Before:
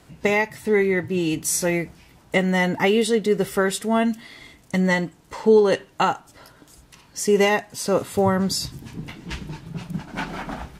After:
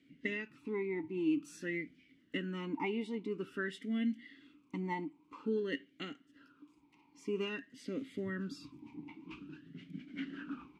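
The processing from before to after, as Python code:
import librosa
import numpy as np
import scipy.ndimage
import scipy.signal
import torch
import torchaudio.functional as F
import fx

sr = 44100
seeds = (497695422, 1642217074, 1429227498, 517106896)

y = fx.vowel_sweep(x, sr, vowels='i-u', hz=0.5)
y = y * 10.0 ** (-2.5 / 20.0)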